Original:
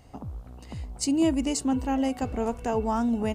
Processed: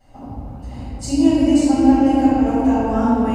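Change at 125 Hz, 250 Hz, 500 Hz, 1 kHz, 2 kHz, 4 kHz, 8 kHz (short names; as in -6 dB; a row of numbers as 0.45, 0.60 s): +8.0, +12.0, +7.5, +9.5, +6.5, +4.0, +0.5 dB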